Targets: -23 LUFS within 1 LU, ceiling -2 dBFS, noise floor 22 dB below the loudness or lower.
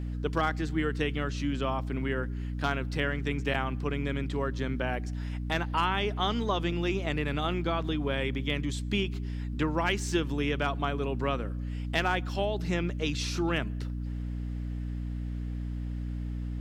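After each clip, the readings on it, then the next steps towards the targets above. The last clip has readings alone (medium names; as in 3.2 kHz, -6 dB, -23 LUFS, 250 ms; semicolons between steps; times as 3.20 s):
dropouts 1; longest dropout 4.0 ms; hum 60 Hz; highest harmonic 300 Hz; hum level -31 dBFS; loudness -31.0 LUFS; peak level -13.5 dBFS; loudness target -23.0 LUFS
-> interpolate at 3.54 s, 4 ms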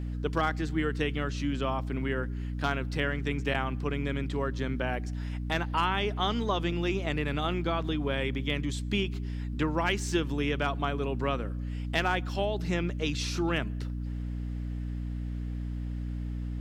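dropouts 0; hum 60 Hz; highest harmonic 300 Hz; hum level -31 dBFS
-> de-hum 60 Hz, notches 5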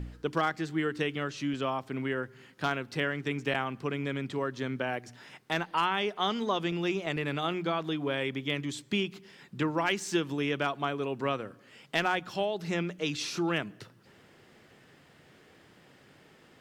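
hum not found; loudness -31.5 LUFS; peak level -15.5 dBFS; loudness target -23.0 LUFS
-> trim +8.5 dB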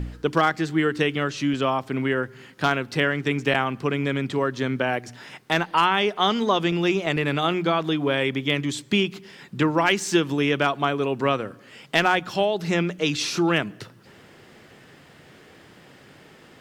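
loudness -23.0 LUFS; peak level -7.0 dBFS; noise floor -50 dBFS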